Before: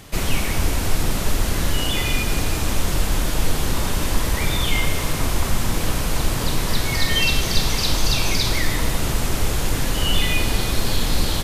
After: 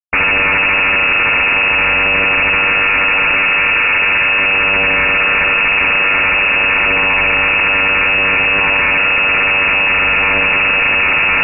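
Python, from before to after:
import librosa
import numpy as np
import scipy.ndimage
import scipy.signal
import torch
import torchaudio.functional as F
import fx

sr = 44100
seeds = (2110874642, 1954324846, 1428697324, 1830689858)

p1 = fx.peak_eq(x, sr, hz=1200.0, db=11.5, octaves=0.89)
p2 = fx.rider(p1, sr, range_db=10, speed_s=0.5)
p3 = p1 + (p2 * 10.0 ** (-2.5 / 20.0))
p4 = np.sign(p3) * np.maximum(np.abs(p3) - 10.0 ** (-26.5 / 20.0), 0.0)
p5 = fx.vocoder(p4, sr, bands=16, carrier='saw', carrier_hz=101.0)
p6 = fx.fuzz(p5, sr, gain_db=43.0, gate_db=-45.0)
p7 = fx.air_absorb(p6, sr, metres=300.0, at=(3.35, 4.53))
p8 = p7 + fx.room_early_taps(p7, sr, ms=(26, 67), db=(-10.0, -7.5), dry=0)
p9 = fx.freq_invert(p8, sr, carrier_hz=2700)
y = fx.env_flatten(p9, sr, amount_pct=100)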